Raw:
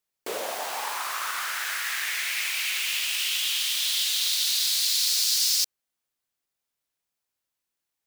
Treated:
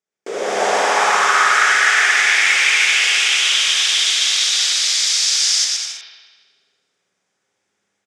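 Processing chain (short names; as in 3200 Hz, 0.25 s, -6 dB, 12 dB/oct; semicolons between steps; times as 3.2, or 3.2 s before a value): AGC gain up to 15 dB; speaker cabinet 160–7100 Hz, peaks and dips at 180 Hz +5 dB, 410 Hz +6 dB, 1000 Hz -6 dB, 2800 Hz -6 dB, 4200 Hz -10 dB; on a send: bouncing-ball echo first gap 0.12 s, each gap 0.75×, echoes 5; on the sum: spring tank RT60 1.4 s, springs 55 ms, chirp 35 ms, DRR 0 dB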